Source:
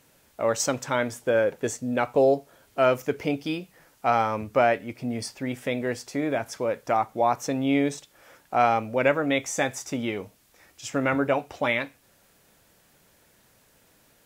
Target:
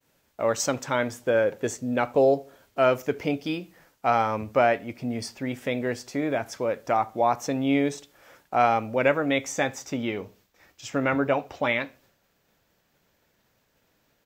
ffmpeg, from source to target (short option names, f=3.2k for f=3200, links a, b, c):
-filter_complex "[0:a]agate=range=-33dB:threshold=-54dB:ratio=3:detection=peak,asetnsamples=n=441:p=0,asendcmd='9.52 equalizer g -15',equalizer=f=9.9k:t=o:w=0.52:g=-6,asplit=2[a][b];[b]adelay=73,lowpass=f=920:p=1,volume=-21dB,asplit=2[c][d];[d]adelay=73,lowpass=f=920:p=1,volume=0.4,asplit=2[e][f];[f]adelay=73,lowpass=f=920:p=1,volume=0.4[g];[a][c][e][g]amix=inputs=4:normalize=0"